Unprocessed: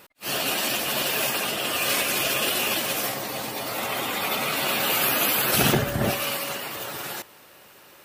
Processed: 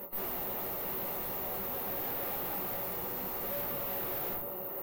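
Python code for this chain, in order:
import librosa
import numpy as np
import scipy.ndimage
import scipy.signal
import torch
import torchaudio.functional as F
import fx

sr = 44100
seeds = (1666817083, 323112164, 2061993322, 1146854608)

y = (np.mod(10.0 ** (22.0 / 20.0) * x + 1.0, 2.0) - 1.0) / 10.0 ** (22.0 / 20.0)
y = fx.cheby_harmonics(y, sr, harmonics=(2, 4, 5, 7), levels_db=(-26, -6, -13, -45), full_scale_db=-22.0)
y = fx.rider(y, sr, range_db=10, speed_s=0.5)
y = scipy.signal.savgol_filter(y, 65, 4, mode='constant')
y = fx.low_shelf(y, sr, hz=140.0, db=-8.5)
y = fx.room_shoebox(y, sr, seeds[0], volume_m3=42.0, walls='mixed', distance_m=1.3)
y = (np.kron(y[::3], np.eye(3)[0]) * 3)[:len(y)]
y = fx.stretch_vocoder_free(y, sr, factor=0.6)
y = np.clip(y, -10.0 ** (-32.0 / 20.0), 10.0 ** (-32.0 / 20.0))
y = fx.doubler(y, sr, ms=16.0, db=-11.0)
y = F.gain(torch.from_numpy(y), -3.5).numpy()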